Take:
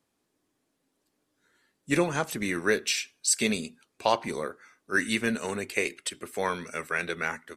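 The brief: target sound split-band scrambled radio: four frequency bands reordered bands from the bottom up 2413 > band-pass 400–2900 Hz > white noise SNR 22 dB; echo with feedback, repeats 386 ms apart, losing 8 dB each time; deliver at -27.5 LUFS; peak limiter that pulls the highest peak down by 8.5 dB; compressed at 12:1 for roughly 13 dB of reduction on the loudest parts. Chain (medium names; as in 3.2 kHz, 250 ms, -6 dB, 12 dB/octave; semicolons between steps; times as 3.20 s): compression 12:1, threshold -32 dBFS; peak limiter -25 dBFS; feedback delay 386 ms, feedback 40%, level -8 dB; four frequency bands reordered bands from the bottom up 2413; band-pass 400–2900 Hz; white noise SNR 22 dB; trim +13.5 dB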